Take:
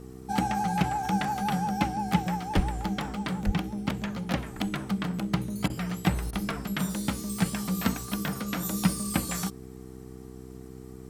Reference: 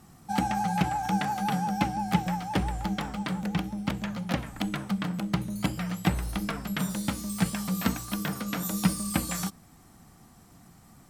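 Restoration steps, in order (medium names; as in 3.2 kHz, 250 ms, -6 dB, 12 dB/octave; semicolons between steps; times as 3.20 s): de-hum 63.8 Hz, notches 7; de-plosive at 2.55/3.45 s; interpolate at 5.68/6.31 s, 18 ms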